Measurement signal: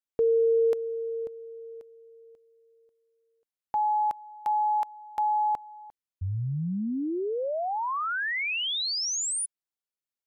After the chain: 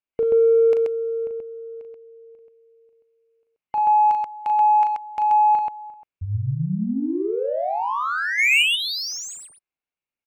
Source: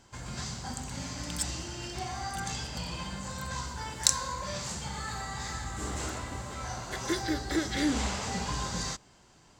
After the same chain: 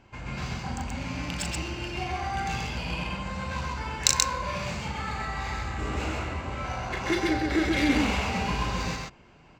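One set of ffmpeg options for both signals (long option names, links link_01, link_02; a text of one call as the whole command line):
ffmpeg -i in.wav -af "superequalizer=12b=2.51:16b=0.631,adynamicsmooth=sensitivity=3.5:basefreq=2800,aecho=1:1:37.9|131.2:0.501|0.794,volume=3dB" out.wav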